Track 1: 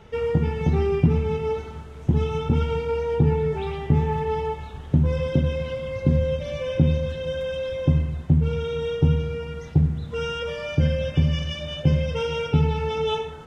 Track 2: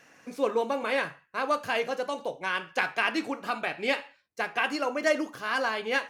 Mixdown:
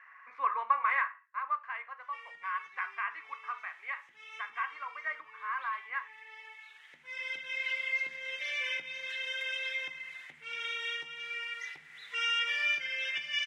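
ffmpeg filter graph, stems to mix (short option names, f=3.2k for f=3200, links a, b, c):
-filter_complex "[0:a]acompressor=threshold=-20dB:ratio=6,adelay=2000,volume=-1.5dB[a];[1:a]lowpass=f=1.1k:t=q:w=11,volume=-1.5dB,afade=t=out:st=0.77:d=0.64:silence=0.298538,asplit=2[b][c];[c]apad=whole_len=681937[d];[a][d]sidechaincompress=threshold=-47dB:ratio=4:attack=24:release=1270[e];[e][b]amix=inputs=2:normalize=0,highpass=f=2k:t=q:w=5.9"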